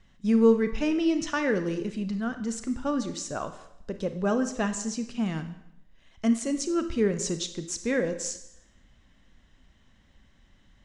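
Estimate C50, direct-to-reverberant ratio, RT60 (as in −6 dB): 10.5 dB, 9.0 dB, 0.80 s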